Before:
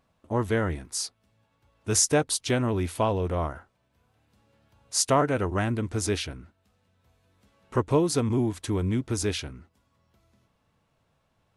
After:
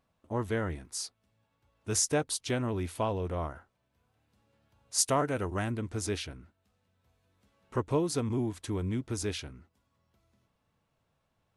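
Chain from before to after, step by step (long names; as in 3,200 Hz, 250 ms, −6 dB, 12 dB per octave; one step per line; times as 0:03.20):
0:04.98–0:05.71: high-shelf EQ 7,900 Hz +10 dB
level −6 dB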